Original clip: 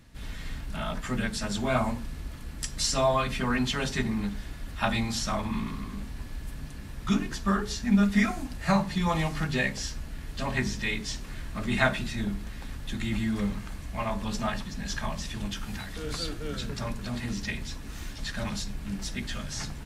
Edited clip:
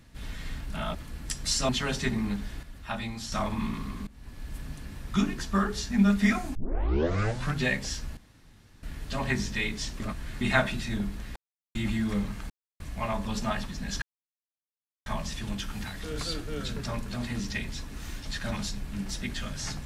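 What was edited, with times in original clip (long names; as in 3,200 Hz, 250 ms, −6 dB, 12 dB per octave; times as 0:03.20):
0:00.95–0:02.28: remove
0:03.02–0:03.62: remove
0:04.56–0:05.25: clip gain −7 dB
0:06.00–0:06.49: fade in, from −20 dB
0:08.48: tape start 1.03 s
0:10.10: splice in room tone 0.66 s
0:11.27–0:11.68: reverse
0:12.63–0:13.02: silence
0:13.77: splice in silence 0.30 s
0:14.99: splice in silence 1.04 s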